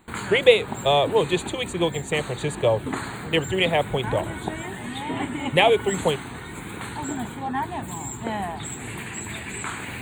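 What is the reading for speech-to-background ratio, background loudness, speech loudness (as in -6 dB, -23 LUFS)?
9.5 dB, -32.0 LUFS, -22.5 LUFS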